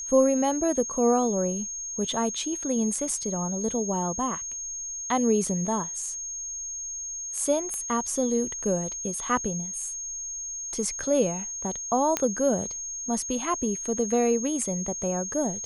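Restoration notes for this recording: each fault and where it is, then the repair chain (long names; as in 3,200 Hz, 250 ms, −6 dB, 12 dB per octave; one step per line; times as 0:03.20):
whistle 6,500 Hz −32 dBFS
0:07.74: click −20 dBFS
0:12.17: click −8 dBFS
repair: click removal
notch filter 6,500 Hz, Q 30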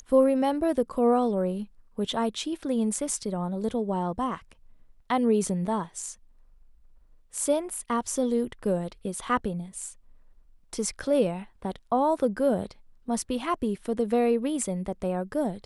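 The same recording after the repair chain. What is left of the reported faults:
none of them is left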